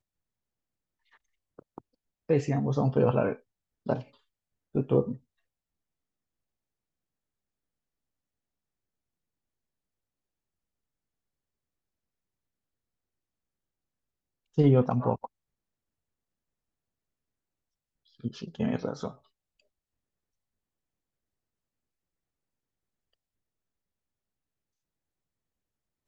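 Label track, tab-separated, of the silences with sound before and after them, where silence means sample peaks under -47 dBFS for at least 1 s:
5.170000	14.570000	silence
15.260000	18.200000	silence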